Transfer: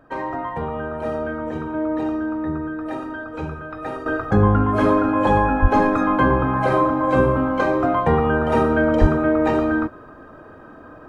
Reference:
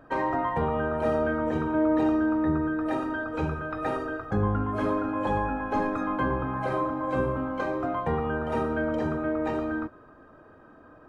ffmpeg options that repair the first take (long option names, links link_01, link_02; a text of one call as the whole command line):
ffmpeg -i in.wav -filter_complex "[0:a]asplit=3[link_01][link_02][link_03];[link_01]afade=type=out:start_time=5.61:duration=0.02[link_04];[link_02]highpass=frequency=140:width=0.5412,highpass=frequency=140:width=1.3066,afade=type=in:start_time=5.61:duration=0.02,afade=type=out:start_time=5.73:duration=0.02[link_05];[link_03]afade=type=in:start_time=5.73:duration=0.02[link_06];[link_04][link_05][link_06]amix=inputs=3:normalize=0,asplit=3[link_07][link_08][link_09];[link_07]afade=type=out:start_time=9:duration=0.02[link_10];[link_08]highpass=frequency=140:width=0.5412,highpass=frequency=140:width=1.3066,afade=type=in:start_time=9:duration=0.02,afade=type=out:start_time=9.12:duration=0.02[link_11];[link_09]afade=type=in:start_time=9.12:duration=0.02[link_12];[link_10][link_11][link_12]amix=inputs=3:normalize=0,asetnsamples=nb_out_samples=441:pad=0,asendcmd='4.06 volume volume -10dB',volume=0dB" out.wav